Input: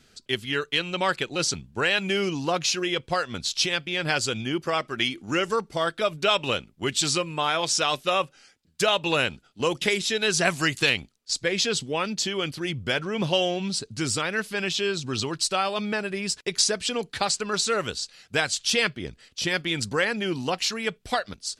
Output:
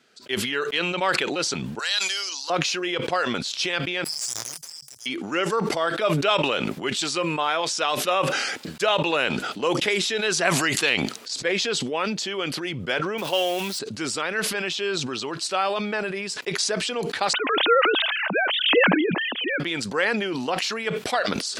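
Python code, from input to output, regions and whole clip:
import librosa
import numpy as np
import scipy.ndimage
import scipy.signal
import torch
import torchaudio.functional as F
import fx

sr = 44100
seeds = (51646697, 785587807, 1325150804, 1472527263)

y = fx.chain(x, sr, fx.highpass(hz=1400.0, slope=12),
    fx.high_shelf_res(hz=3400.0, db=10.0, q=3.0), at=(1.79, 2.5))
y = fx.chain(y, sr, fx.cheby1_bandstop(low_hz=140.0, high_hz=5000.0, order=5),
    fx.pre_emphasis(coefficient=0.97),
    fx.leveller(passes=3), at=(4.04, 5.06))
y = fx.chain(y, sr, fx.crossing_spikes(level_db=-25.5),
    fx.highpass(hz=330.0, slope=6), at=(13.18, 13.79))
y = fx.chain(y, sr, fx.sine_speech(),
    fx.pre_swell(db_per_s=32.0), at=(17.33, 19.6))
y = scipy.signal.sosfilt(scipy.signal.bessel(2, 390.0, 'highpass', norm='mag', fs=sr, output='sos'), y)
y = fx.high_shelf(y, sr, hz=3600.0, db=-10.0)
y = fx.sustainer(y, sr, db_per_s=26.0)
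y = y * 10.0 ** (2.5 / 20.0)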